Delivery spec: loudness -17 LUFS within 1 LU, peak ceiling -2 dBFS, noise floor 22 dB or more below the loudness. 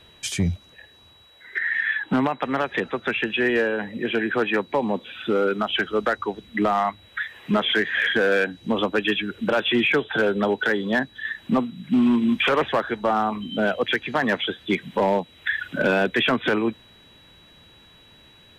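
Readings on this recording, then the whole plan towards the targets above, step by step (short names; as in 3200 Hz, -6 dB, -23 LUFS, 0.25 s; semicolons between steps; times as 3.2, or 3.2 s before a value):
clipped 0.6%; flat tops at -13.5 dBFS; steady tone 3900 Hz; tone level -52 dBFS; loudness -23.0 LUFS; peak -13.5 dBFS; loudness target -17.0 LUFS
-> clip repair -13.5 dBFS; notch 3900 Hz, Q 30; gain +6 dB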